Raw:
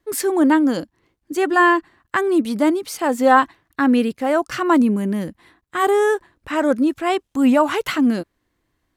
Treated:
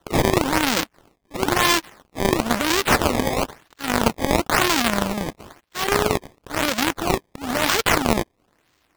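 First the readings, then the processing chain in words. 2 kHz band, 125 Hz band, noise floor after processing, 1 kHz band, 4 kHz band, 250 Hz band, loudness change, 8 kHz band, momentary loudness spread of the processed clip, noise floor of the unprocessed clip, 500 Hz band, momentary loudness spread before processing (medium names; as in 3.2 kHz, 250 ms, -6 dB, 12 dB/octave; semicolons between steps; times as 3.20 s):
0.0 dB, +7.5 dB, -68 dBFS, -3.0 dB, +9.5 dB, -7.0 dB, -2.5 dB, +7.5 dB, 12 LU, -74 dBFS, -4.0 dB, 11 LU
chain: square wave that keeps the level; tilt EQ +3 dB/octave; peak limiter -7 dBFS, peak gain reduction 19 dB; slow attack 153 ms; decimation with a swept rate 18×, swing 160% 1 Hz; trim +3 dB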